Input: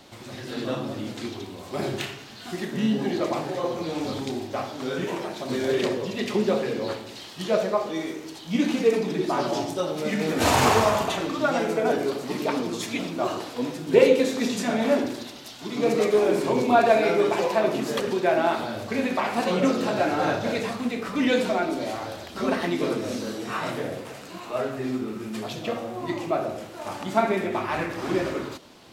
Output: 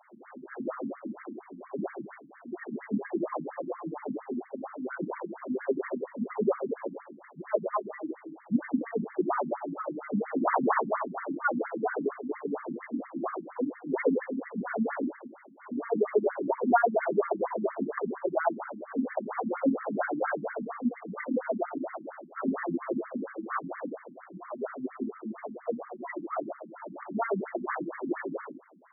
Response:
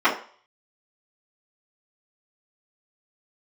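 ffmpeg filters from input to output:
-af "afftfilt=real='re*between(b*sr/1024,210*pow(1600/210,0.5+0.5*sin(2*PI*4.3*pts/sr))/1.41,210*pow(1600/210,0.5+0.5*sin(2*PI*4.3*pts/sr))*1.41)':imag='im*between(b*sr/1024,210*pow(1600/210,0.5+0.5*sin(2*PI*4.3*pts/sr))/1.41,210*pow(1600/210,0.5+0.5*sin(2*PI*4.3*pts/sr))*1.41)':win_size=1024:overlap=0.75"

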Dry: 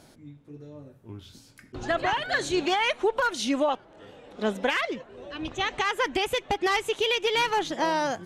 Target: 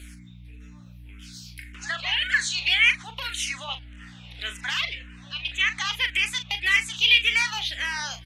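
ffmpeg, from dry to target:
-filter_complex "[0:a]asplit=2[a][b];[b]acompressor=threshold=-39dB:ratio=6,volume=0dB[c];[a][c]amix=inputs=2:normalize=0,highpass=f=2.3k:t=q:w=1.9,aeval=exprs='val(0)+0.00631*(sin(2*PI*60*n/s)+sin(2*PI*2*60*n/s)/2+sin(2*PI*3*60*n/s)/3+sin(2*PI*4*60*n/s)/4+sin(2*PI*5*60*n/s)/5)':c=same,asplit=2[d][e];[e]adelay=39,volume=-10dB[f];[d][f]amix=inputs=2:normalize=0,asplit=2[g][h];[h]afreqshift=-1.8[i];[g][i]amix=inputs=2:normalize=1,volume=4.5dB"

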